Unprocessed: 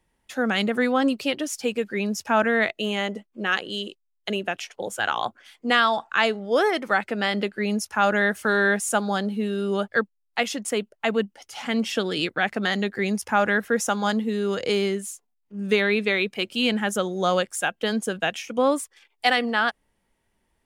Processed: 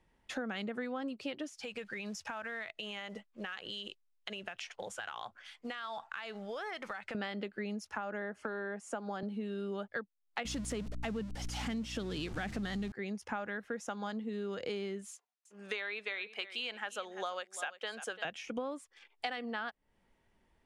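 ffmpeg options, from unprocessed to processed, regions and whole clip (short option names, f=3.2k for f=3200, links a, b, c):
-filter_complex "[0:a]asettb=1/sr,asplit=3[a][b][c];[a]atrim=end=1.494[d];[b]atrim=start=1.49:end=7.15,asetpts=PTS-STARTPTS,afade=t=in:d=0.004:c=qsin,afade=t=out:st=5.656:d=0.004:c=qsin,equalizer=f=290:w=0.67:g=-14,acrusher=bits=6:mode=log:mix=0:aa=0.000001,acompressor=threshold=-35dB:ratio=10:attack=3.2:release=140:knee=1:detection=peak[e];[c]atrim=start=7.146[f];[d][e]acrossfade=d=0.004:c1=hsin:c2=qsin[g];[g][f]acrossfade=d=0.004:c1=qsin:c2=hsin,asettb=1/sr,asplit=3[h][i][j];[h]atrim=end=7.964[k];[i]atrim=start=7.96:end=9.23,asetpts=PTS-STARTPTS,afade=t=in:d=0.004:c=qsin,afade=t=out:st=1.266:d=0.004:c=qsin,lowpass=10k,equalizer=f=3.7k:t=o:w=0.24:g=-7,acrossover=split=200|1300[l][m][n];[l]acompressor=threshold=-45dB:ratio=4[o];[m]acompressor=threshold=-23dB:ratio=4[p];[n]acompressor=threshold=-35dB:ratio=4[q];[o][p][q]amix=inputs=3:normalize=0[r];[j]atrim=start=9.226[s];[k][r]acrossfade=d=0.004:c1=hsin:c2=qsin[t];[t][s]acrossfade=d=0.004:c1=qsin:c2=hsin,asettb=1/sr,asplit=3[u][v][w];[u]atrim=end=10.454[x];[v]atrim=start=10.45:end=12.92,asetpts=PTS-STARTPTS,afade=t=in:d=0.004:c=qsin,afade=t=out:st=2.466:d=0.004:c=qsin,aeval=exprs='val(0)+0.5*0.0355*sgn(val(0))':c=same,bass=f=250:g=11,treble=f=4k:g=8,aeval=exprs='val(0)+0.0355*(sin(2*PI*60*n/s)+sin(2*PI*2*60*n/s)/2+sin(2*PI*3*60*n/s)/3+sin(2*PI*4*60*n/s)/4+sin(2*PI*5*60*n/s)/5)':c=same[y];[w]atrim=start=12.916[z];[x][y]acrossfade=d=0.004:c1=hsin:c2=qsin[aa];[aa][z]acrossfade=d=0.004:c1=qsin:c2=hsin,asettb=1/sr,asplit=3[ab][ac][ad];[ab]atrim=end=15.114[ae];[ac]atrim=start=15.11:end=18.25,asetpts=PTS-STARTPTS,afade=t=in:d=0.004:c=qsin,afade=t=out:st=3.136:d=0.004:c=qsin,highpass=740,aecho=1:1:341:0.133,atrim=end_sample=138474[af];[ad]atrim=start=18.246[ag];[ae][af]acrossfade=d=0.004:c1=hsin:c2=qsin[ah];[ah][ag]acrossfade=d=0.004:c1=qsin:c2=hsin,lowpass=9.2k,highshelf=f=5.8k:g=-9.5,acompressor=threshold=-36dB:ratio=8"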